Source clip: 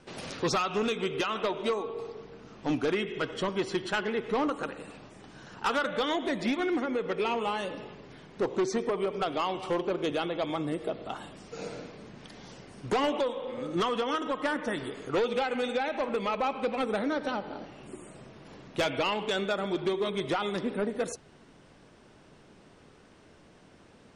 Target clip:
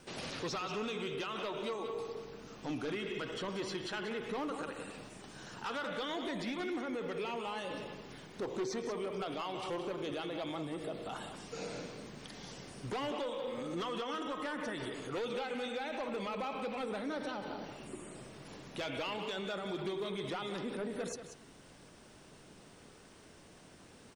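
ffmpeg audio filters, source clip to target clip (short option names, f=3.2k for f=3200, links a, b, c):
-filter_complex "[0:a]aemphasis=mode=production:type=50fm,acrossover=split=5500[a][b];[b]acompressor=threshold=-56dB:ratio=4:attack=1:release=60[c];[a][c]amix=inputs=2:normalize=0,alimiter=level_in=5.5dB:limit=-24dB:level=0:latency=1:release=29,volume=-5.5dB,aeval=exprs='0.0335*(cos(1*acos(clip(val(0)/0.0335,-1,1)))-cos(1*PI/2))+0.000668*(cos(5*acos(clip(val(0)/0.0335,-1,1)))-cos(5*PI/2))':c=same,asplit=2[d][e];[e]aecho=0:1:185:0.335[f];[d][f]amix=inputs=2:normalize=0,volume=-2.5dB"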